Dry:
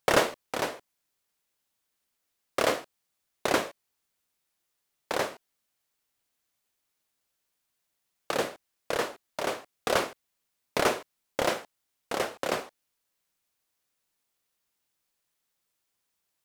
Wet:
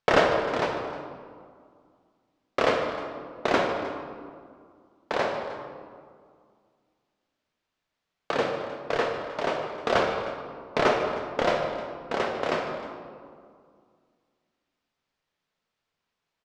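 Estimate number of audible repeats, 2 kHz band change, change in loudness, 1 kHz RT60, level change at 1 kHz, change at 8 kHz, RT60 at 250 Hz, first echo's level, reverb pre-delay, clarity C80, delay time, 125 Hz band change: 2, +3.0 dB, +3.0 dB, 2.1 s, +4.5 dB, -9.0 dB, 2.6 s, -13.5 dB, 5 ms, 5.0 dB, 149 ms, +5.5 dB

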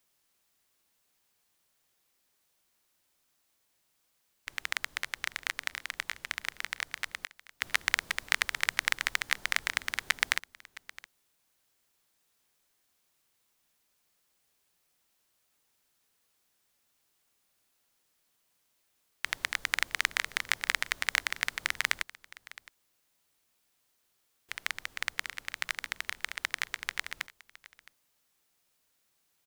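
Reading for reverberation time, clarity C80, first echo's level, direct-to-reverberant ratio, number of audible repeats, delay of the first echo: no reverb, no reverb, -19.5 dB, no reverb, 1, 665 ms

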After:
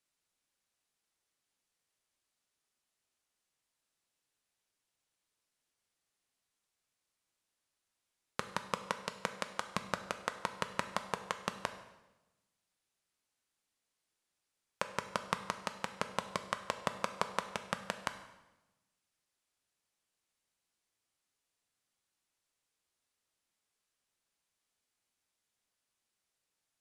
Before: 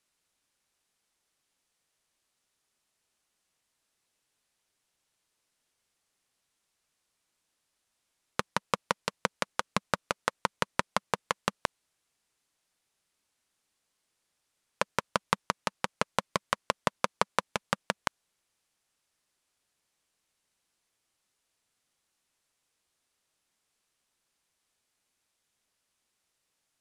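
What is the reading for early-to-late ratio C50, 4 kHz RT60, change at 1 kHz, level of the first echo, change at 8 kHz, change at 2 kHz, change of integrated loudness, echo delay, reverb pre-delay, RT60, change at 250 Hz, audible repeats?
11.0 dB, 0.90 s, -6.5 dB, no echo, -6.5 dB, -6.5 dB, -6.5 dB, no echo, 7 ms, 1.0 s, -6.0 dB, no echo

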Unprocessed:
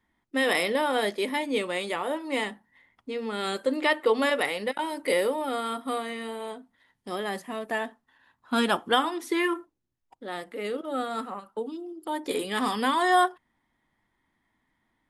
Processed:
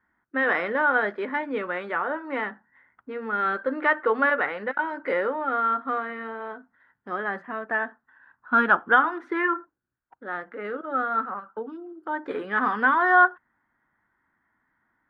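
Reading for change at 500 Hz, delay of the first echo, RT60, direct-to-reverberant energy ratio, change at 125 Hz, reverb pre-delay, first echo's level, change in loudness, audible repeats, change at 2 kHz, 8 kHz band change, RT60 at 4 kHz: -1.0 dB, no echo, no reverb, no reverb, no reading, no reverb, no echo, +3.0 dB, no echo, +7.0 dB, under -30 dB, no reverb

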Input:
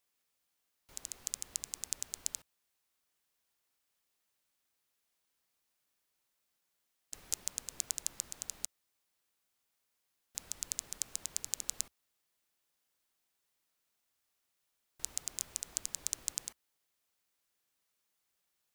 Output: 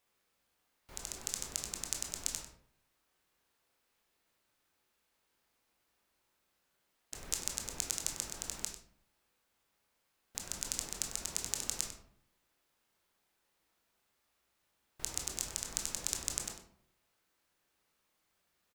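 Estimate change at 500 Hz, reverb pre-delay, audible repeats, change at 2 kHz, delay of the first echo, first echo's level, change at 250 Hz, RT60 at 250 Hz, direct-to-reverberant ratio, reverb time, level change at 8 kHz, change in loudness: +9.5 dB, 18 ms, 1, +6.5 dB, 97 ms, -12.0 dB, +10.0 dB, 0.80 s, 1.0 dB, 0.65 s, +1.0 dB, +1.5 dB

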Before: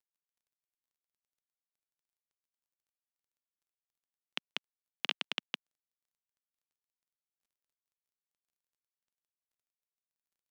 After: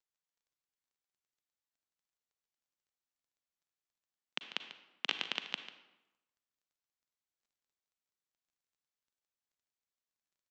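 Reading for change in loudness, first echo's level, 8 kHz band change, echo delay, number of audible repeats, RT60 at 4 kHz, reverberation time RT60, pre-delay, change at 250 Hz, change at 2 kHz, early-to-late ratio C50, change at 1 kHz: 0.0 dB, -14.0 dB, 0.0 dB, 144 ms, 1, 0.70 s, 0.95 s, 35 ms, -0.5 dB, 0.0 dB, 8.5 dB, +0.5 dB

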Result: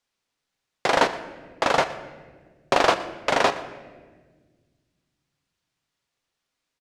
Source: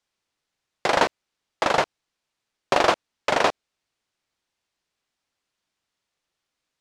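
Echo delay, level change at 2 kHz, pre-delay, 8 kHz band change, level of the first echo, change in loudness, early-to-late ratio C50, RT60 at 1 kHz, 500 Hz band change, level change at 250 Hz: 119 ms, +0.5 dB, 4 ms, +0.5 dB, -19.0 dB, +0.5 dB, 12.5 dB, 1.2 s, +0.5 dB, +0.5 dB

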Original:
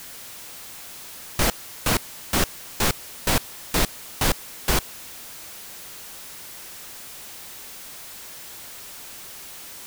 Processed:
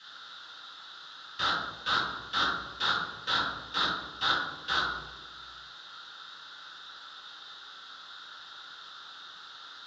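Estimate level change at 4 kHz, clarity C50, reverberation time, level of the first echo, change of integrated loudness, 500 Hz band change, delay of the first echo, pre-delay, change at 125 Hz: -0.5 dB, 3.0 dB, 1.2 s, no echo, -1.5 dB, -13.0 dB, no echo, 3 ms, -18.0 dB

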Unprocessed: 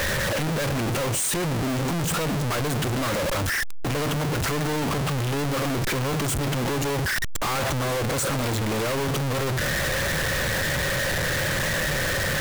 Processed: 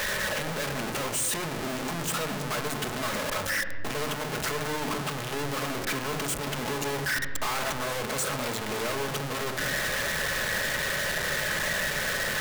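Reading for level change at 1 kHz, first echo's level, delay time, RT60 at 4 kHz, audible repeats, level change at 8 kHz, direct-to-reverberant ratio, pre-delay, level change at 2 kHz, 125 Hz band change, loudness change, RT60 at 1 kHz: -3.5 dB, no echo, no echo, 1.1 s, no echo, -3.0 dB, 5.5 dB, 5 ms, -2.5 dB, -11.5 dB, -4.5 dB, 1.3 s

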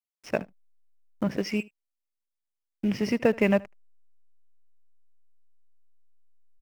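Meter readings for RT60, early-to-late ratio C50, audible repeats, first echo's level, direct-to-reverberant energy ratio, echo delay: no reverb, no reverb, 1, -23.5 dB, no reverb, 76 ms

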